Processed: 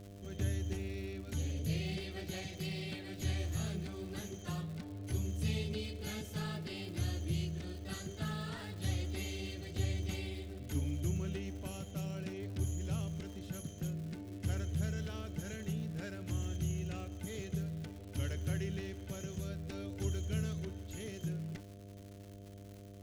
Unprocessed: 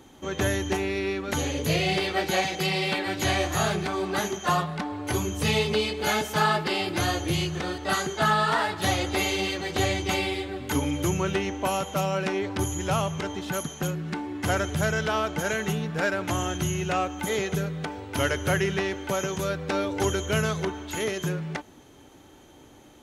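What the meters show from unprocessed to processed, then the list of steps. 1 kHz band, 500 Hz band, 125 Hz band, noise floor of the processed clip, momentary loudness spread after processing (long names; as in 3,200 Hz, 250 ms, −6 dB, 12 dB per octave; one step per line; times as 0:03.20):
−26.0 dB, −18.0 dB, −6.0 dB, −51 dBFS, 7 LU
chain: guitar amp tone stack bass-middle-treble 10-0-1
hum with harmonics 100 Hz, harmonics 7, −57 dBFS −5 dB per octave
surface crackle 210 per second −52 dBFS
level +5.5 dB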